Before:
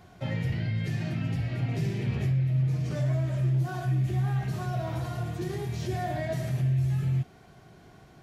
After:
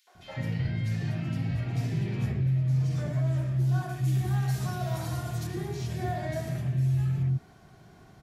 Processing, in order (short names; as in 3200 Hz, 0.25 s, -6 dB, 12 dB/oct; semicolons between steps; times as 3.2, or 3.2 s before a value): 3.89–5.47 high shelf 3700 Hz +10 dB; three bands offset in time highs, mids, lows 70/150 ms, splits 470/2600 Hz